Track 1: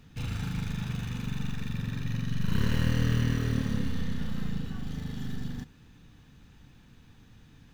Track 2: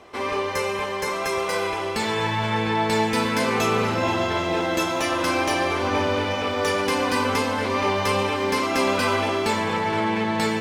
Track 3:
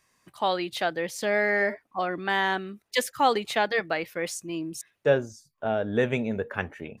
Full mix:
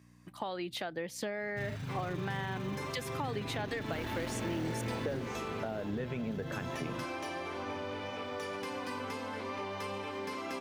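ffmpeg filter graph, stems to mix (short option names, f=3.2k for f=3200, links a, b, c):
-filter_complex "[0:a]aecho=1:1:7.5:0.93,aeval=exprs='0.0668*(abs(mod(val(0)/0.0668+3,4)-2)-1)':c=same,adelay=1400,volume=-9.5dB[a];[1:a]acrossover=split=140[b][c];[c]acompressor=threshold=-30dB:ratio=1.5[d];[b][d]amix=inputs=2:normalize=0,adelay=1750,volume=-11dB[e];[2:a]alimiter=limit=-19.5dB:level=0:latency=1:release=199,lowshelf=f=180:g=9.5,aeval=exprs='val(0)+0.00251*(sin(2*PI*60*n/s)+sin(2*PI*2*60*n/s)/2+sin(2*PI*3*60*n/s)/3+sin(2*PI*4*60*n/s)/4+sin(2*PI*5*60*n/s)/5)':c=same,volume=-1.5dB,asplit=2[f][g];[g]apad=whole_len=545044[h];[e][h]sidechaincompress=threshold=-32dB:ratio=8:attack=8:release=123[i];[i][f]amix=inputs=2:normalize=0,highpass=110,acompressor=threshold=-34dB:ratio=6,volume=0dB[j];[a][j]amix=inputs=2:normalize=0,highpass=64,equalizer=f=8.8k:w=0.48:g=-3"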